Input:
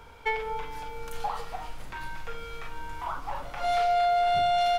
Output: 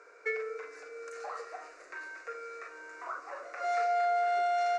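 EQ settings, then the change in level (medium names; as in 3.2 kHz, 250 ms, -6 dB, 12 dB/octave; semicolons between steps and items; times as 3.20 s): elliptic band-pass 320–7200 Hz, stop band 40 dB; static phaser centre 880 Hz, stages 6; 0.0 dB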